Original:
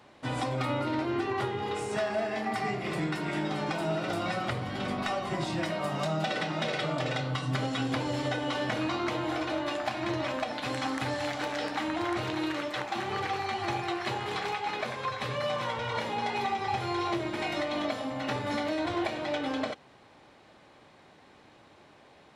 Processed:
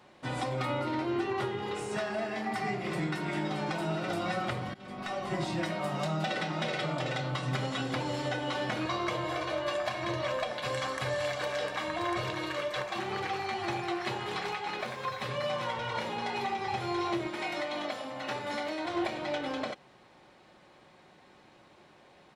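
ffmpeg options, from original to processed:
-filter_complex "[0:a]asplit=2[a][b];[b]afade=t=in:st=6.86:d=0.01,afade=t=out:st=7.44:d=0.01,aecho=0:1:370|740|1110|1480|1850|2220|2590:0.334965|0.200979|0.120588|0.0723525|0.0434115|0.0260469|0.0156281[c];[a][c]amix=inputs=2:normalize=0,asettb=1/sr,asplit=3[d][e][f];[d]atrim=end=8.854[g];[e]atrim=start=8.85:end=12.99,asetpts=PTS-STARTPTS,afade=t=in:d=0.004:c=qsin,afade=t=out:st=4.136:d=0.004:c=qsin,aecho=1:1:1.8:0.65,atrim=end_sample=182574[h];[f]atrim=start=12.986[i];[g][h]acrossfade=d=0.004:c1=hsin:c2=qsin[j];[j][i]acrossfade=d=0.004:c1=qsin:c2=hsin,asettb=1/sr,asplit=3[k][l][m];[k]atrim=end=14.804[n];[l]atrim=start=14.8:end=15.28,asetpts=PTS-STARTPTS,afade=t=in:d=0.004:c=qsin,afade=t=out:st=0.476:d=0.004:c=qsin,aeval=exprs='sgn(val(0))*max(abs(val(0))-0.00178,0)':c=same[o];[m]atrim=start=15.276[p];[n][o]acrossfade=d=0.004:c1=hsin:c2=qsin[q];[q][p]acrossfade=d=0.004:c1=qsin:c2=hsin,asettb=1/sr,asplit=3[r][s][t];[r]atrim=end=17.274[u];[s]atrim=start=17.27:end=18.95,asetpts=PTS-STARTPTS,afade=t=in:d=0.004:c=qsin,afade=t=out:st=1.676:d=0.004:c=qsin,lowshelf=f=220:g=-10.5[v];[t]atrim=start=18.946[w];[u][v]acrossfade=d=0.004:c1=hsin:c2=qsin[x];[x][w]acrossfade=d=0.004:c1=qsin:c2=hsin,asplit=2[y][z];[y]atrim=end=4.74,asetpts=PTS-STARTPTS,afade=t=out:st=4.736:d=0.004:c=hsin:silence=0.0668344[aa];[z]atrim=start=4.74,asetpts=PTS-STARTPTS,afade=t=in:d=0.56:silence=0.0668344[ab];[aa][ab]concat=n=2:v=0:a=1,aecho=1:1:5.5:0.31,volume=-2dB"

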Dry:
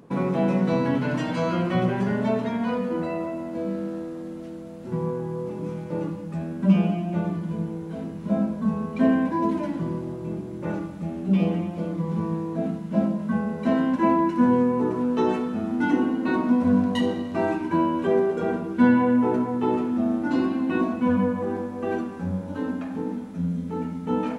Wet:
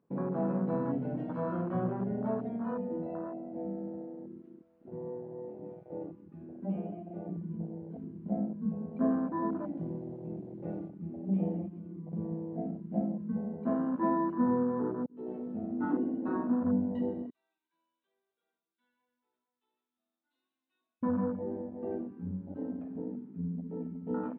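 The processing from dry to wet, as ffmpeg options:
-filter_complex "[0:a]asettb=1/sr,asplit=3[a][b][c];[a]atrim=end=4.404[d];[b]atrim=start=4.4:end=7.29,asetpts=PTS-STARTPTS,afade=t=in:d=0.004:c=qsin,afade=t=out:st=2.886:d=0.004:c=qsin,equalizer=f=160:w=1.4:g=-10[e];[c]atrim=start=7.286[f];[d][e]acrossfade=d=0.004:c1=hsin:c2=qsin[g];[g][f]acrossfade=d=0.004:c1=qsin:c2=hsin,asettb=1/sr,asplit=3[h][i][j];[h]atrim=end=9.774[k];[i]atrim=start=9.77:end=10.89,asetpts=PTS-STARTPTS,afade=t=in:d=0.004:c=qsin,afade=t=out:st=1.116:d=0.004:c=qsin,highshelf=f=2.5k:g=10[l];[j]atrim=start=10.886[m];[k][l]acrossfade=d=0.004:c1=hsin:c2=qsin[n];[n][m]acrossfade=d=0.004:c1=qsin:c2=hsin,asettb=1/sr,asplit=3[o][p][q];[o]atrim=end=11.684[r];[p]atrim=start=11.68:end=12.13,asetpts=PTS-STARTPTS,afade=t=in:d=0.004:c=qsin,afade=t=out:st=0.446:d=0.004:c=qsin,acompressor=threshold=-29dB:ratio=6:attack=3.2:release=140:knee=1:detection=peak[s];[q]atrim=start=12.126[t];[r][s]acrossfade=d=0.004:c1=hsin:c2=qsin[u];[u][t]acrossfade=d=0.004:c1=qsin:c2=hsin,asettb=1/sr,asplit=3[v][w][x];[v]atrim=end=17.304[y];[w]atrim=start=17.3:end=21.03,asetpts=PTS-STARTPTS,afade=t=in:d=0.004:c=qsin,afade=t=out:st=3.726:d=0.004:c=qsin,bandpass=f=3.7k:t=q:w=11[z];[x]atrim=start=21.026[aa];[y][z]acrossfade=d=0.004:c1=hsin:c2=qsin[ab];[ab][aa]acrossfade=d=0.004:c1=qsin:c2=hsin,asplit=2[ac][ad];[ac]atrim=end=15.06,asetpts=PTS-STARTPTS,afade=t=out:st=15.056:d=0.004:c=hsin[ae];[ad]atrim=start=15.06,asetpts=PTS-STARTPTS,afade=t=in:d=0.51[af];[ae][af]concat=n=2:v=0:a=1,afwtdn=0.0501,lowpass=2.2k,lowshelf=f=62:g=-7,volume=-8.5dB"

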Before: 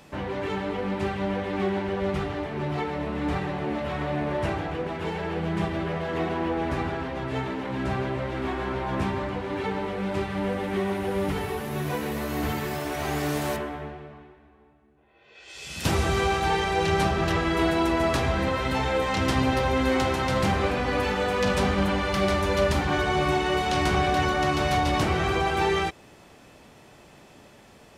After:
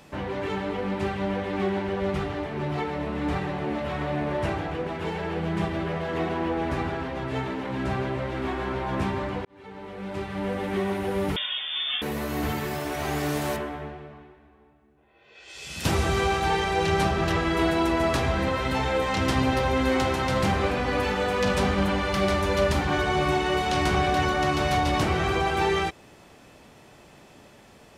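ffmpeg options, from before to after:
-filter_complex "[0:a]asettb=1/sr,asplit=3[a][b][c];[a]atrim=end=11.364[d];[b]atrim=start=11.36:end=12.02,asetpts=PTS-STARTPTS,afade=t=in:d=0.004:c=qsin,afade=t=out:st=0.656:d=0.004:c=qsin,lowpass=f=3.1k:t=q:w=0.5098,lowpass=f=3.1k:t=q:w=0.6013,lowpass=f=3.1k:t=q:w=0.9,lowpass=f=3.1k:t=q:w=2.563,afreqshift=-3700[e];[c]atrim=start=12.016[f];[d][e]acrossfade=d=0.004:c1=hsin:c2=qsin[g];[g][f]acrossfade=d=0.004:c1=qsin:c2=hsin,asplit=2[h][i];[h]atrim=end=9.45,asetpts=PTS-STARTPTS,afade=t=out:st=9.446:d=0.004:c=hsin[j];[i]atrim=start=9.45,asetpts=PTS-STARTPTS,afade=t=in:d=1.21[k];[j][k]concat=n=2:v=0:a=1"

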